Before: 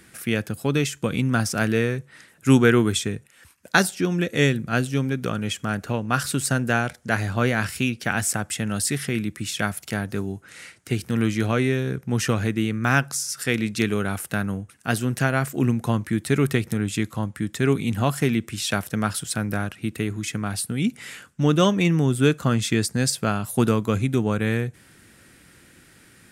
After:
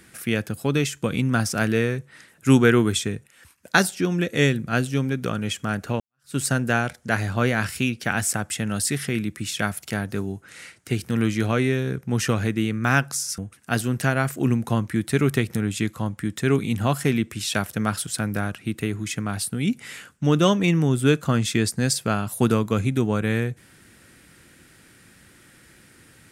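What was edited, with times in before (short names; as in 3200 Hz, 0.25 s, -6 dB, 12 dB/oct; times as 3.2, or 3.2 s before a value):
6–6.36 fade in exponential
13.38–14.55 cut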